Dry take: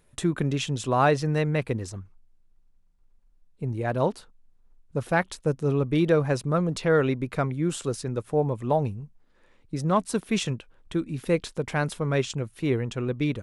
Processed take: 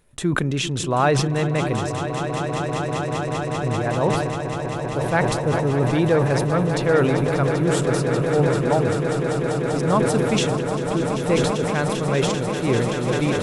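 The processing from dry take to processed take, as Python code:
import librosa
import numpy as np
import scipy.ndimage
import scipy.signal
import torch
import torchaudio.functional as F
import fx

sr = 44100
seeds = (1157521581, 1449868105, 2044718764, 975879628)

y = fx.echo_swell(x, sr, ms=196, loudest=8, wet_db=-11.0)
y = fx.sustainer(y, sr, db_per_s=32.0)
y = F.gain(torch.from_numpy(y), 2.0).numpy()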